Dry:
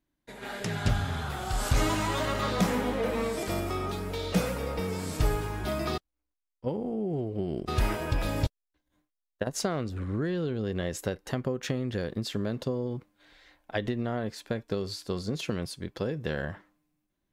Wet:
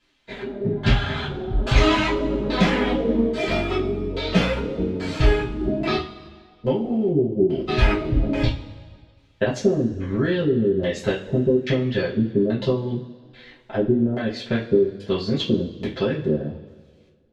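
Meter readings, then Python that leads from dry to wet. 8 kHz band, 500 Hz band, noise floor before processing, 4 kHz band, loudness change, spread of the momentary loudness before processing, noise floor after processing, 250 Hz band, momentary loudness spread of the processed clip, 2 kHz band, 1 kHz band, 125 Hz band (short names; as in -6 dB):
n/a, +10.0 dB, -85 dBFS, +8.0 dB, +9.0 dB, 7 LU, -55 dBFS, +10.5 dB, 7 LU, +8.0 dB, +4.5 dB, +7.0 dB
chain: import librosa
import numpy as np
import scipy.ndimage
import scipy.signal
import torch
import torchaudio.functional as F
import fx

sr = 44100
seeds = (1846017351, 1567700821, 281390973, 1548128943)

y = fx.quant_dither(x, sr, seeds[0], bits=12, dither='triangular')
y = fx.dereverb_blind(y, sr, rt60_s=0.65)
y = fx.filter_lfo_lowpass(y, sr, shape='square', hz=1.2, low_hz=360.0, high_hz=3400.0, q=1.7)
y = fx.rev_double_slope(y, sr, seeds[1], early_s=0.3, late_s=1.8, knee_db=-20, drr_db=-9.5)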